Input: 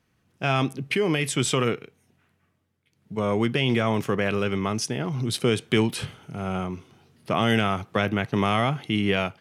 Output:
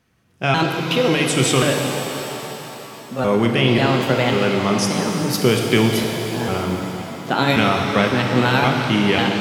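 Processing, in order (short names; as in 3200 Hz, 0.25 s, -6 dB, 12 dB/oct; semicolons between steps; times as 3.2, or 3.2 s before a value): trilling pitch shifter +3.5 st, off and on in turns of 0.54 s; notches 50/100/150 Hz; shimmer reverb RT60 3.7 s, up +7 st, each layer -8 dB, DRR 1.5 dB; gain +5 dB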